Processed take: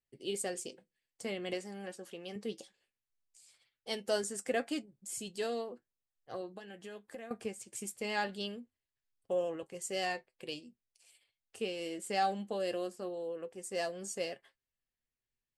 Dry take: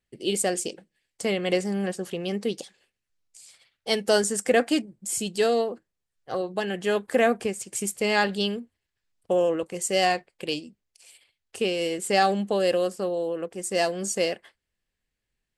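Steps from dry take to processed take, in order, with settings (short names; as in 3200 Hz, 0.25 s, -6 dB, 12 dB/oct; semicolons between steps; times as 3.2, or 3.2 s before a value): 1.53–2.36 HPF 310 Hz 6 dB/oct; 6.51–7.31 compressor 4:1, threshold -34 dBFS, peak gain reduction 15 dB; flange 0.21 Hz, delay 7.2 ms, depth 2.1 ms, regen +59%; gain -8 dB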